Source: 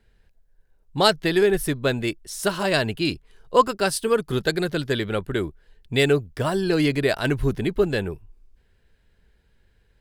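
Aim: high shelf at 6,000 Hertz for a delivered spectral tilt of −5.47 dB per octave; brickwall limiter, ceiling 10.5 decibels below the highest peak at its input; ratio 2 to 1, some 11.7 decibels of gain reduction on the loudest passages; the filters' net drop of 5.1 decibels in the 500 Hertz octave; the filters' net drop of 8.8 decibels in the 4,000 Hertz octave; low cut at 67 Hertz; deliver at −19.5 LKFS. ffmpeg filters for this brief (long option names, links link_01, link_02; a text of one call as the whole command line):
ffmpeg -i in.wav -af "highpass=67,equalizer=frequency=500:width_type=o:gain=-6.5,equalizer=frequency=4000:width_type=o:gain=-9,highshelf=frequency=6000:gain=-6,acompressor=threshold=-35dB:ratio=2,volume=19.5dB,alimiter=limit=-9dB:level=0:latency=1" out.wav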